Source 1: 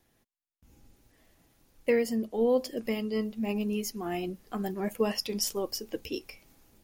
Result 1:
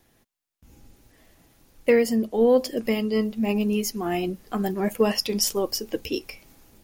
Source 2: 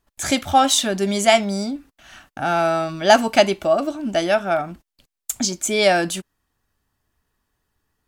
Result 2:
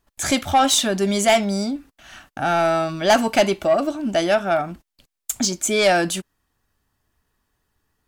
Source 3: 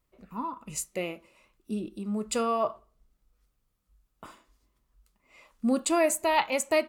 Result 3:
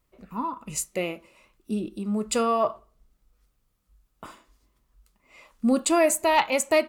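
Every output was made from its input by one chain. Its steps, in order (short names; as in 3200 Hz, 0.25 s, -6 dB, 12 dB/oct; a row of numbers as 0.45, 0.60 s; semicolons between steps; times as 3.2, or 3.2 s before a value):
soft clip -10.5 dBFS; normalise peaks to -9 dBFS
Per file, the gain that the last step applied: +7.0, +1.5, +4.0 dB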